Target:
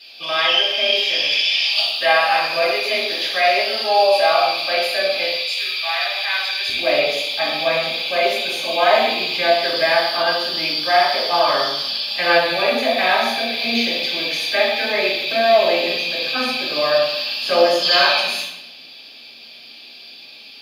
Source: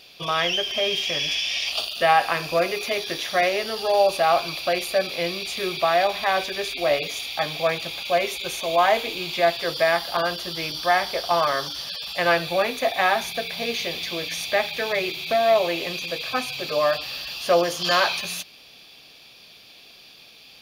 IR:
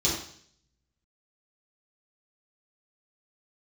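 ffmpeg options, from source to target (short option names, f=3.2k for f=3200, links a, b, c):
-filter_complex "[0:a]asetnsamples=n=441:p=0,asendcmd='5.24 highpass f 1500;6.69 highpass f 310',highpass=510[a];[1:a]atrim=start_sample=2205,asetrate=31311,aresample=44100[b];[a][b]afir=irnorm=-1:irlink=0,volume=-8.5dB"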